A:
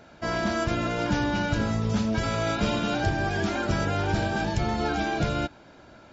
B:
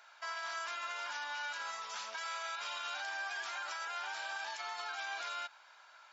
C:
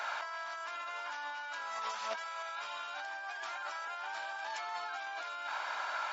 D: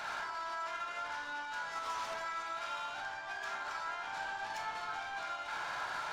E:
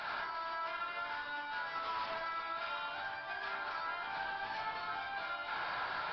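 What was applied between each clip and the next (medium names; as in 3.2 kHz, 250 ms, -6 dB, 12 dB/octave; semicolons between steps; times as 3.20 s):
Chebyshev high-pass 1 kHz, order 3; peak limiter -30 dBFS, peak gain reduction 8.5 dB; trim -2.5 dB
compressor with a negative ratio -52 dBFS, ratio -1; rippled Chebyshev high-pass 200 Hz, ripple 3 dB; treble shelf 3.1 kHz -8 dB; trim +14.5 dB
saturation -40 dBFS, distortion -11 dB; reverberation RT60 0.85 s, pre-delay 22 ms, DRR 1 dB; trim +1 dB
resampled via 11.025 kHz; AAC 24 kbps 24 kHz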